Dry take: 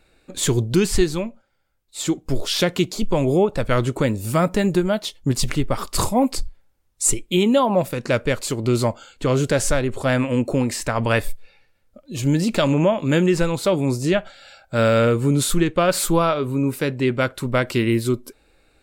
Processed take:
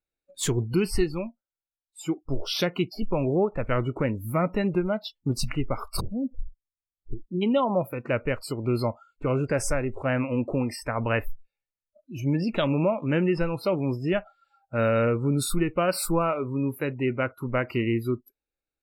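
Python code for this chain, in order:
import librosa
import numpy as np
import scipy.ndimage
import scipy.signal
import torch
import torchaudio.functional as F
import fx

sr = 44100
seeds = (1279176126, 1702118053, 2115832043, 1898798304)

y = fx.noise_reduce_blind(x, sr, reduce_db=28)
y = fx.gaussian_blur(y, sr, sigma=23.0, at=(5.99, 7.41), fade=0.02)
y = y * librosa.db_to_amplitude(-6.0)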